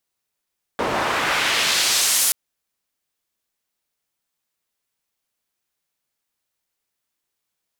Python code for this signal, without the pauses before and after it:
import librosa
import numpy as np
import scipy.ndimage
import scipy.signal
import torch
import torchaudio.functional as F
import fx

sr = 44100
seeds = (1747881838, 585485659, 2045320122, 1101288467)

y = fx.riser_noise(sr, seeds[0], length_s=1.53, colour='pink', kind='bandpass', start_hz=670.0, end_hz=11000.0, q=0.87, swell_db=7.0, law='exponential')